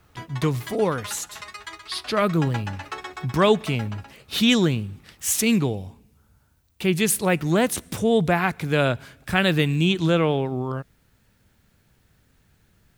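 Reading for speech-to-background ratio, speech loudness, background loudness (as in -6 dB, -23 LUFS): 15.5 dB, -22.5 LUFS, -38.0 LUFS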